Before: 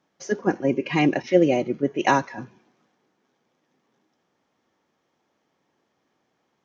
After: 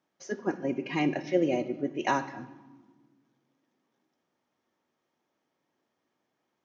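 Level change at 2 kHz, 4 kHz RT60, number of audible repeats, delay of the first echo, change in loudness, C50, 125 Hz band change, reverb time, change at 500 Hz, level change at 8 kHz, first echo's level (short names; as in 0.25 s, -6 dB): -8.0 dB, 0.90 s, none, none, -8.0 dB, 15.0 dB, -9.0 dB, 1.4 s, -8.0 dB, n/a, none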